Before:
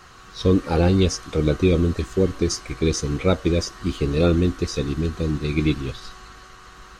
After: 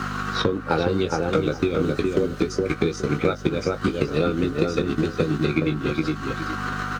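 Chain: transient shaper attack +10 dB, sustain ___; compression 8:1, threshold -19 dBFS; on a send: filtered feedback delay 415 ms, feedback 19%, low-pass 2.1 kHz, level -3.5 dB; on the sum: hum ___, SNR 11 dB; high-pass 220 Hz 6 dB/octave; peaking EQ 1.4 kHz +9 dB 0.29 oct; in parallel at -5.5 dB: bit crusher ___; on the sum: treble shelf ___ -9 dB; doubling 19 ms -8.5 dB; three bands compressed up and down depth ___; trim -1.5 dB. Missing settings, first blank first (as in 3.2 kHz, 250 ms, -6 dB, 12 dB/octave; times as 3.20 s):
-6 dB, 50 Hz, 8-bit, 6.7 kHz, 70%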